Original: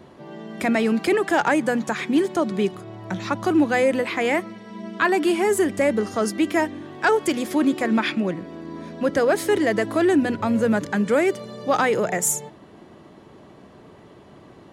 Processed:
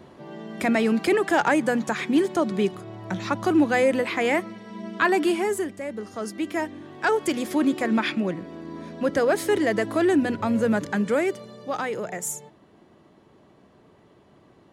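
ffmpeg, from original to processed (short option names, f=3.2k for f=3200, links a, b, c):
-af "volume=10.5dB,afade=t=out:st=5.2:d=0.6:silence=0.237137,afade=t=in:st=5.8:d=1.62:silence=0.266073,afade=t=out:st=10.94:d=0.75:silence=0.473151"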